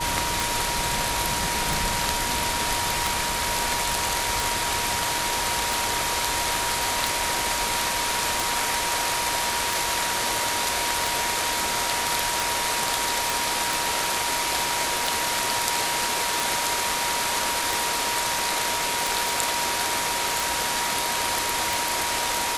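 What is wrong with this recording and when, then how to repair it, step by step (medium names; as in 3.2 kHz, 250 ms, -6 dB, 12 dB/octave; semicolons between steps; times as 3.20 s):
tick 45 rpm
whine 950 Hz -29 dBFS
13.30 s: pop
19.29 s: pop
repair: de-click; band-stop 950 Hz, Q 30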